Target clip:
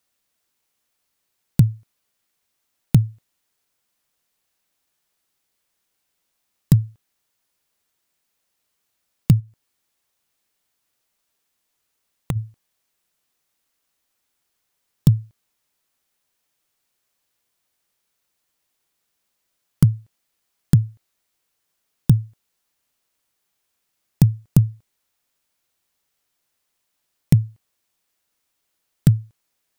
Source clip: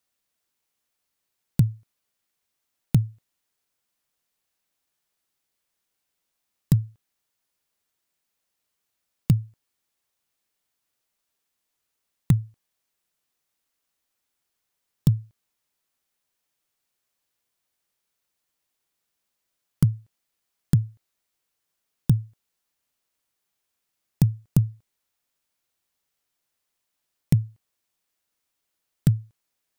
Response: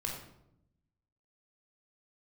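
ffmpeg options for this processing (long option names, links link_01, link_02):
-filter_complex "[0:a]asplit=3[link_01][link_02][link_03];[link_01]afade=type=out:start_time=9.39:duration=0.02[link_04];[link_02]acompressor=threshold=-28dB:ratio=6,afade=type=in:start_time=9.39:duration=0.02,afade=type=out:start_time=12.35:duration=0.02[link_05];[link_03]afade=type=in:start_time=12.35:duration=0.02[link_06];[link_04][link_05][link_06]amix=inputs=3:normalize=0,volume=5dB"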